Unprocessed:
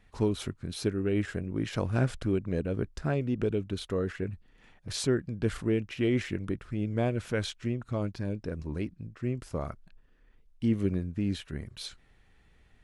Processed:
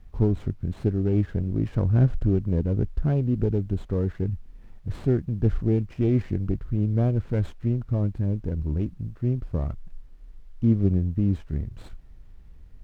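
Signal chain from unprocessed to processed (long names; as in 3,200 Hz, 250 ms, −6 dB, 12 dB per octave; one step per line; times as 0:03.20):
variable-slope delta modulation 32 kbit/s
spectral tilt −4.5 dB per octave
background noise pink −68 dBFS
windowed peak hold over 5 samples
level −4 dB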